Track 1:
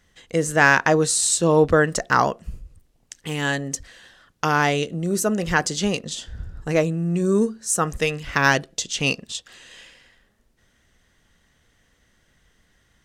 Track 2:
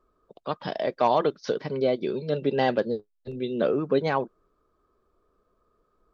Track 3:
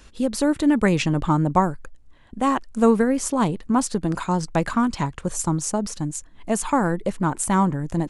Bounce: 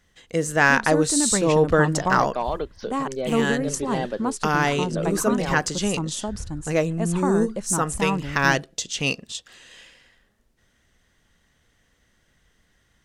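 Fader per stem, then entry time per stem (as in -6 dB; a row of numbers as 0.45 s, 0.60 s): -2.0 dB, -5.0 dB, -6.0 dB; 0.00 s, 1.35 s, 0.50 s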